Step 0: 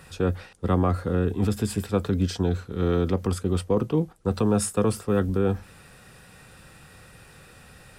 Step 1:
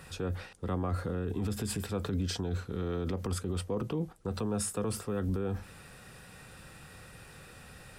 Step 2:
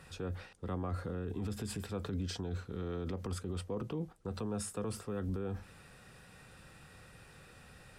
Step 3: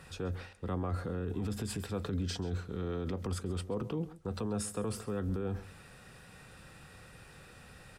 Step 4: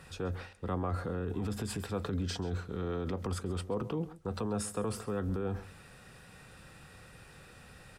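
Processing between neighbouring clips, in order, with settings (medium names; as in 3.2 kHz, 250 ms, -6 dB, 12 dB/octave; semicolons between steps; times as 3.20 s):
peak limiter -22.5 dBFS, peak gain reduction 10 dB; trim -1.5 dB
treble shelf 11 kHz -7.5 dB; trim -5 dB
echo from a far wall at 23 m, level -17 dB; trim +2.5 dB
dynamic bell 950 Hz, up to +4 dB, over -50 dBFS, Q 0.73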